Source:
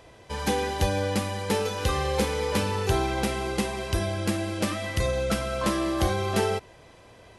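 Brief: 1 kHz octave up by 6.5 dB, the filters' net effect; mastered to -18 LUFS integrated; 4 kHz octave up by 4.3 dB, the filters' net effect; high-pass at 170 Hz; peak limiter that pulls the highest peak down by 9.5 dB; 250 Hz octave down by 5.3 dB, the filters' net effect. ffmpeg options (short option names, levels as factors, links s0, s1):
-af "highpass=170,equalizer=f=250:t=o:g=-7,equalizer=f=1000:t=o:g=8.5,equalizer=f=4000:t=o:g=5,volume=3.35,alimiter=limit=0.355:level=0:latency=1"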